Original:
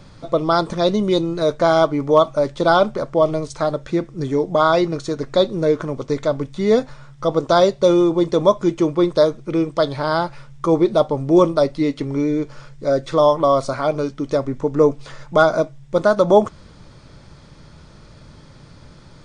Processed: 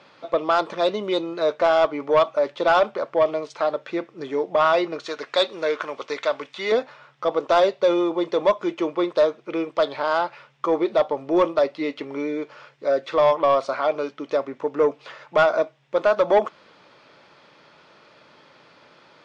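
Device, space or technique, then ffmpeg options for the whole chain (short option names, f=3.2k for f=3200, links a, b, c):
intercom: -filter_complex "[0:a]highpass=470,lowpass=3.5k,equalizer=f=2.7k:t=o:w=0.49:g=5,asoftclip=type=tanh:threshold=-9.5dB,asettb=1/sr,asplit=3[a][b][c];[a]atrim=end=5.064[d];[b]atrim=start=5.06:end=6.72,asetpts=PTS-STARTPTS,afade=t=in:d=0.004:c=qsin,afade=t=out:st=1.656:d=0.004:c=qsin,tiltshelf=f=720:g=-7.5[e];[c]atrim=start=6.716[f];[d][e]acrossfade=d=0.004:c1=hsin:c2=qsin[g];[g][f]acrossfade=d=0.004:c1=qsin:c2=hsin"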